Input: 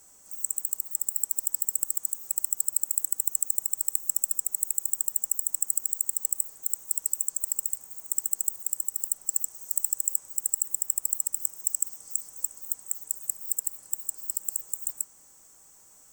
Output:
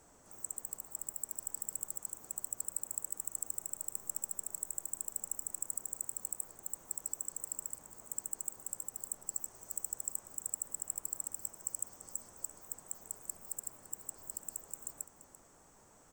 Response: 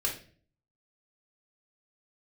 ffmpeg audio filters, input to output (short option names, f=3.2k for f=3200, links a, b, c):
-filter_complex "[0:a]lowpass=f=1.1k:p=1,asplit=2[a][b];[b]aecho=0:1:340:0.168[c];[a][c]amix=inputs=2:normalize=0,volume=5.5dB"